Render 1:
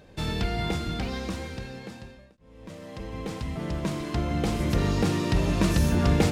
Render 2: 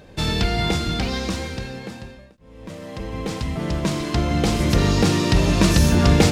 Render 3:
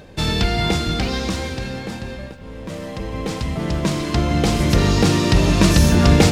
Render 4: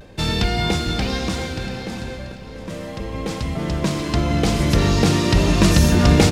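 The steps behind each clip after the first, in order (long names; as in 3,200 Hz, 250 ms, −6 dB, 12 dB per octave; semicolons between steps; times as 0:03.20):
dynamic equaliser 5,200 Hz, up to +5 dB, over −48 dBFS, Q 0.75; level +6.5 dB
reversed playback; upward compression, threshold −25 dBFS; reversed playback; comb and all-pass reverb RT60 4.8 s, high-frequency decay 0.65×, pre-delay 115 ms, DRR 14 dB; level +2 dB
pitch vibrato 0.38 Hz 26 cents; repeating echo 687 ms, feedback 32%, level −13 dB; level −1 dB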